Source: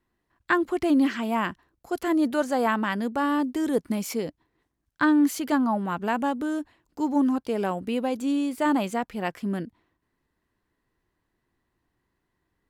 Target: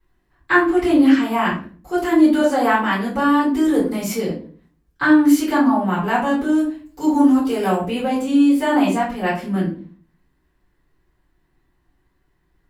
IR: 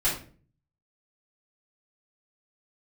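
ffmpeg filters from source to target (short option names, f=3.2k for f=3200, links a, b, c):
-filter_complex "[0:a]asettb=1/sr,asplit=3[a][b][c];[a]atrim=end=6.584[d];[b]atrim=start=6.58:end=7.75,asetpts=PTS-STARTPTS,afade=t=in:d=0.004:c=qsin,afade=t=out:st=1.166:d=0.004:c=qsin,highshelf=f=6.4k:g=9.5[e];[c]atrim=start=7.746[f];[d][e]acrossfade=d=0.004:c1=hsin:c2=qsin[g];[g][f]acrossfade=d=0.004:c1=qsin:c2=hsin[h];[1:a]atrim=start_sample=2205[i];[h][i]afir=irnorm=-1:irlink=0,volume=-3dB"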